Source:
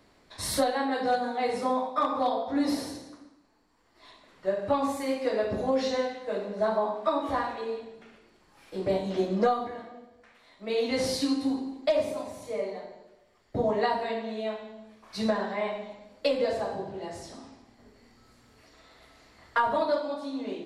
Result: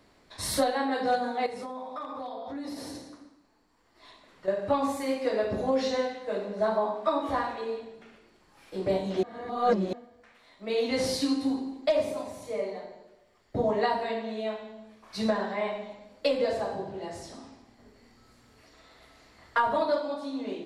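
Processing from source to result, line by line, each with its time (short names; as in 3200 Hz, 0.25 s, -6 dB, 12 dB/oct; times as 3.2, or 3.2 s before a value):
1.46–4.48 compressor 5:1, threshold -35 dBFS
9.23–9.93 reverse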